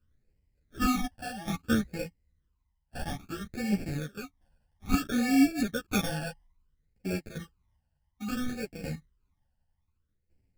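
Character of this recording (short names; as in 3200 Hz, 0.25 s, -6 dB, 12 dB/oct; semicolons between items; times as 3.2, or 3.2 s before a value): aliases and images of a low sample rate 1000 Hz, jitter 0%; phasing stages 12, 0.6 Hz, lowest notch 380–1200 Hz; tremolo saw down 0.68 Hz, depth 70%; a shimmering, thickened sound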